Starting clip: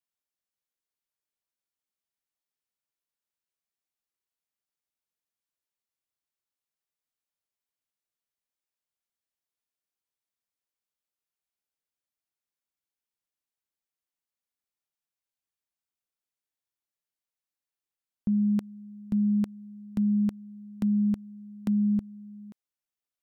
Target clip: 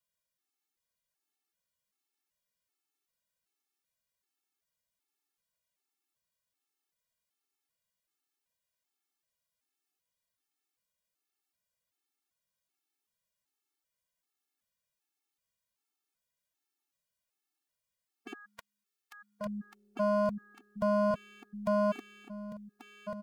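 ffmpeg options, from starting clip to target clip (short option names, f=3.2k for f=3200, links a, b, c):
-filter_complex "[0:a]aeval=exprs='0.0944*(cos(1*acos(clip(val(0)/0.0944,-1,1)))-cos(1*PI/2))+0.00119*(cos(6*acos(clip(val(0)/0.0944,-1,1)))-cos(6*PI/2))+0.0015*(cos(8*acos(clip(val(0)/0.0944,-1,1)))-cos(8*PI/2))':c=same,asettb=1/sr,asplit=3[a][b][c];[a]atrim=end=18.334[d];[b]atrim=start=18.33:end=19.46,asetpts=PTS-STARTPTS,afade=t=in:d=0.004:c=qsin,afade=t=out:st=1.126:d=0.004:c=qsin,highpass=f=1.1k:w=0.5412,highpass=f=1.1k:w=1.3066[e];[c]atrim=start=19.456[f];[d][e]acrossfade=d=0.004:c1=hsin:c2=qsin[g];[g][f]acrossfade=d=0.004:c1=qsin:c2=hsin,aeval=exprs='0.0316*(abs(mod(val(0)/0.0316+3,4)-2)-1)':c=same,aecho=1:1:1138|2276|3414:0.376|0.0977|0.0254,afftfilt=real='re*gt(sin(2*PI*1.3*pts/sr)*(1-2*mod(floor(b*sr/1024/230),2)),0)':imag='im*gt(sin(2*PI*1.3*pts/sr)*(1-2*mod(floor(b*sr/1024/230),2)),0)':win_size=1024:overlap=0.75,volume=6.5dB"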